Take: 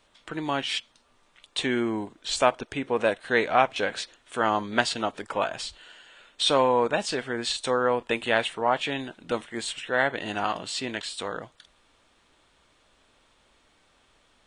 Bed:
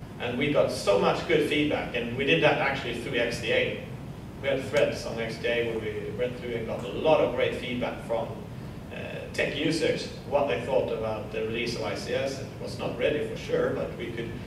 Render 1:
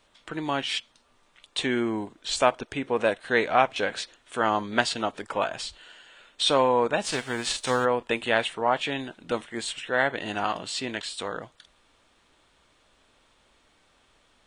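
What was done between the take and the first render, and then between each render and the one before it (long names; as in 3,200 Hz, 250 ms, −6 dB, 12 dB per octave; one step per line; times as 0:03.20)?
0:07.03–0:07.84: spectral envelope flattened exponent 0.6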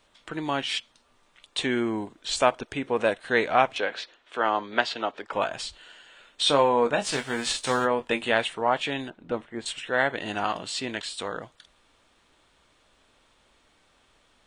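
0:03.78–0:05.33: three-way crossover with the lows and the highs turned down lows −13 dB, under 280 Hz, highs −22 dB, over 5,200 Hz
0:06.41–0:08.32: double-tracking delay 21 ms −8 dB
0:09.10–0:09.66: low-pass filter 1,000 Hz 6 dB per octave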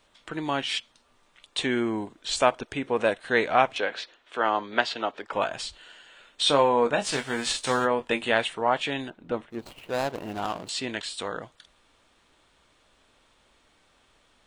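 0:09.50–0:10.69: running median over 25 samples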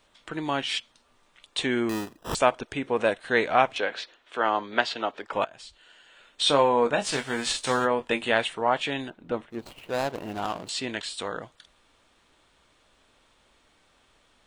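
0:01.89–0:02.35: sample-rate reduction 2,200 Hz
0:05.45–0:06.45: fade in, from −17.5 dB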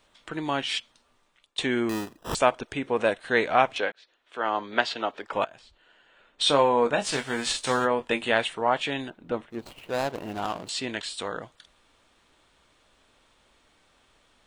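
0:00.71–0:01.58: fade out equal-power, to −20 dB
0:03.92–0:04.68: fade in
0:05.59–0:06.41: low-pass filter 1,400 Hz 6 dB per octave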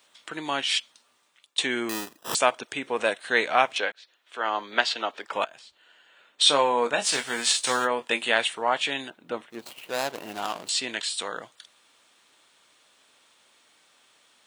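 high-pass filter 130 Hz 12 dB per octave
spectral tilt +2.5 dB per octave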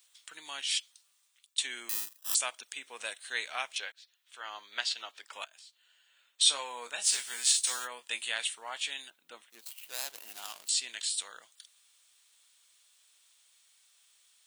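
high-pass filter 100 Hz
first-order pre-emphasis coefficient 0.97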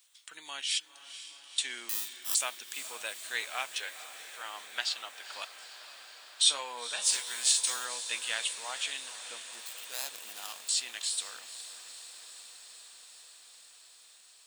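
feedback delay with all-pass diffusion 482 ms, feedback 76%, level −13 dB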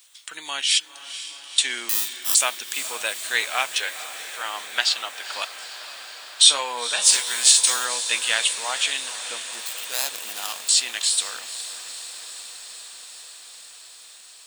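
level +11.5 dB
brickwall limiter −1 dBFS, peak gain reduction 2.5 dB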